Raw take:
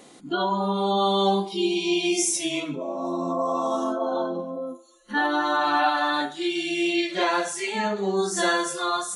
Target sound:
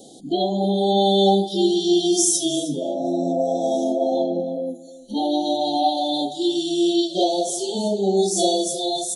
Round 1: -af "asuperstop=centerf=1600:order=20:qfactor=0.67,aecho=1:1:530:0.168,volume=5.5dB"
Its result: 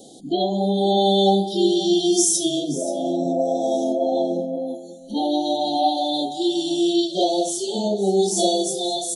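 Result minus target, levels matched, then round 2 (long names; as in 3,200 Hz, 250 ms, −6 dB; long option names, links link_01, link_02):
echo 220 ms late
-af "asuperstop=centerf=1600:order=20:qfactor=0.67,aecho=1:1:310:0.168,volume=5.5dB"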